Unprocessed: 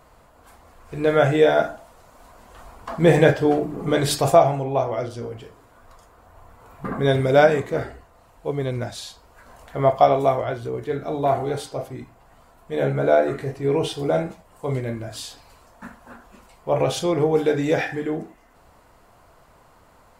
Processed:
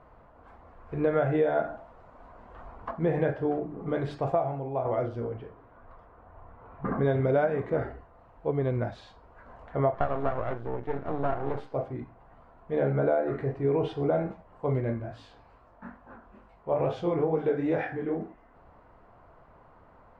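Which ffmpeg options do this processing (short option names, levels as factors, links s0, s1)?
-filter_complex "[0:a]asettb=1/sr,asplit=3[s0][s1][s2];[s0]atrim=end=5.374[s3];[s1]atrim=start=5.37:end=6.86,asetpts=PTS-STARTPTS,afade=t=in:d=0.004:c=qsin,afade=t=out:st=1.486:d=0.004:c=qsin,lowpass=3700[s4];[s2]atrim=start=6.856[s5];[s3][s4]acrossfade=d=0.004:c1=hsin:c2=qsin[s6];[s6][s5]acrossfade=d=0.004:c1=qsin:c2=hsin,asettb=1/sr,asplit=3[s7][s8][s9];[s7]atrim=end=9.944[s10];[s8]atrim=start=9.94:end=11.74,asetpts=PTS-STARTPTS,afade=t=in:d=0.004:c=qsin,afade=t=out:st=1.796:d=0.004:c=qsin,aeval=exprs='max(val(0),0)':c=same[s11];[s9]atrim=start=11.736[s12];[s10][s11]acrossfade=d=0.004:c1=hsin:c2=qsin[s13];[s13][s12]acrossfade=d=0.004:c1=qsin:c2=hsin,asplit=3[s14][s15][s16];[s14]afade=t=out:st=14.93:d=0.02[s17];[s15]flanger=delay=18:depth=7.9:speed=2.3,afade=t=in:st=14.93:d=0.02,afade=t=out:st=18.19:d=0.02[s18];[s16]afade=t=in:st=18.19:d=0.02[s19];[s17][s18][s19]amix=inputs=3:normalize=0,asplit=3[s20][s21][s22];[s20]atrim=end=2.912[s23];[s21]atrim=start=2.908:end=4.852,asetpts=PTS-STARTPTS,volume=0.447[s24];[s22]atrim=start=4.848[s25];[s23][s24]acrossfade=d=0.004:c1=hsin:c2=hsin[s26];[s26][s25]acrossfade=d=0.004:c1=hsin:c2=hsin,lowpass=1600,acompressor=threshold=0.1:ratio=6,volume=0.841"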